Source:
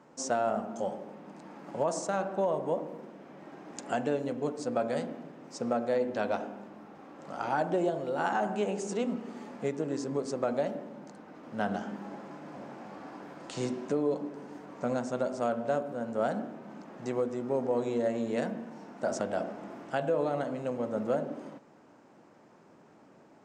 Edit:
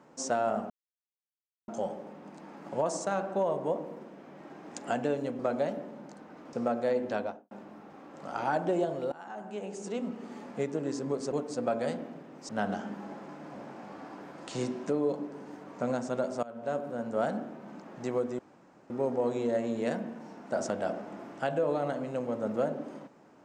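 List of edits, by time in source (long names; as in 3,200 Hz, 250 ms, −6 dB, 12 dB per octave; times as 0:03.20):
0:00.70: splice in silence 0.98 s
0:04.41–0:05.58: swap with 0:10.37–0:11.51
0:06.14–0:06.56: fade out and dull
0:08.17–0:09.46: fade in, from −21.5 dB
0:15.45–0:15.86: fade in, from −22.5 dB
0:17.41: splice in room tone 0.51 s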